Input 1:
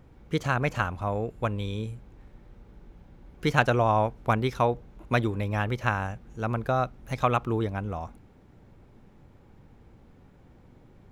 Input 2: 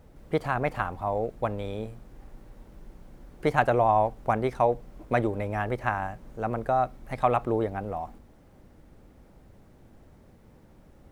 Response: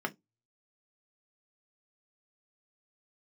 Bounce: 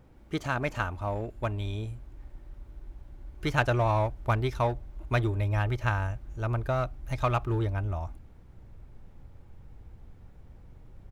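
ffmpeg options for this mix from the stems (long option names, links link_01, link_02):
-filter_complex "[0:a]asubboost=boost=4.5:cutoff=100,volume=-3.5dB[link_01];[1:a]asoftclip=type=hard:threshold=-21.5dB,adelay=3.4,volume=-10dB[link_02];[link_01][link_02]amix=inputs=2:normalize=0"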